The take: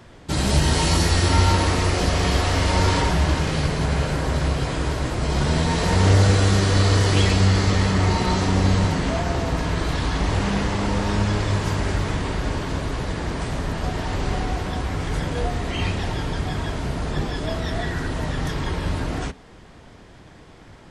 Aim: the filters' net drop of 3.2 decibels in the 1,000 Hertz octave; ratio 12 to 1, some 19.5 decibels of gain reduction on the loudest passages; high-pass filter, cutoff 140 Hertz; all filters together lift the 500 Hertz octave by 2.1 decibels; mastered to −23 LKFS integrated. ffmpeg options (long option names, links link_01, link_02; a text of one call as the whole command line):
ffmpeg -i in.wav -af "highpass=140,equalizer=frequency=500:width_type=o:gain=4,equalizer=frequency=1000:width_type=o:gain=-5.5,acompressor=threshold=-36dB:ratio=12,volume=16.5dB" out.wav